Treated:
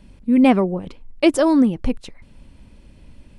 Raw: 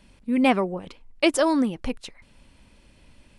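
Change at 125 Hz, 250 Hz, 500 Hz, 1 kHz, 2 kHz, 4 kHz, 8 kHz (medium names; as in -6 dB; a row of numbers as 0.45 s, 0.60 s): +8.5 dB, +7.5 dB, +4.5 dB, +2.0 dB, -0.5 dB, -0.5 dB, -1.0 dB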